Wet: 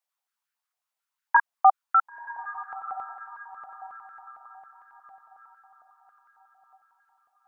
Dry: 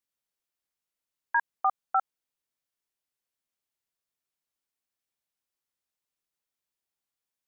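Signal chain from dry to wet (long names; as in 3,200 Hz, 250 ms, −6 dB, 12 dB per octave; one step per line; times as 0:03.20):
feedback delay with all-pass diffusion 1,003 ms, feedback 44%, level −13.5 dB
high-pass on a step sequencer 11 Hz 700–1,500 Hz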